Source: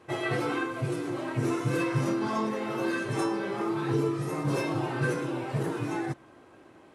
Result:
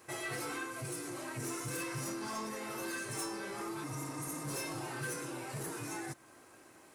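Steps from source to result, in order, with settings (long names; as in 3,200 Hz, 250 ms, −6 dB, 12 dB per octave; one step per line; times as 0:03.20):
first-order pre-emphasis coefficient 0.9
healed spectral selection 0:03.86–0:04.39, 250–5,700 Hz after
parametric band 3,300 Hz −8 dB 0.74 octaves
in parallel at −0.5 dB: downward compressor, threshold −56 dBFS, peak gain reduction 16 dB
on the sum: soft clipping −39.5 dBFS, distortion −16 dB
level +6.5 dB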